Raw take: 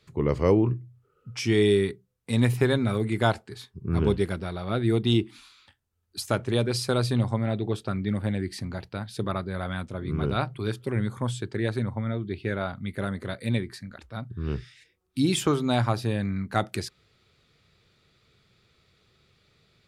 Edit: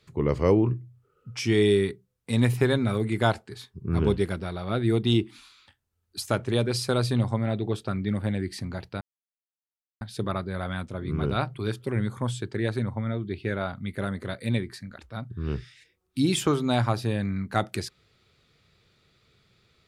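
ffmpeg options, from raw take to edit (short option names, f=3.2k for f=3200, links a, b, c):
-filter_complex "[0:a]asplit=2[a][b];[a]atrim=end=9.01,asetpts=PTS-STARTPTS,afade=t=out:st=9.006:d=0.004:c=hsin,apad=pad_dur=1[c];[b]atrim=start=9.01,asetpts=PTS-STARTPTS,afade=t=in:d=0.004:c=hsin[d];[c][d]concat=n=2:v=0:a=1"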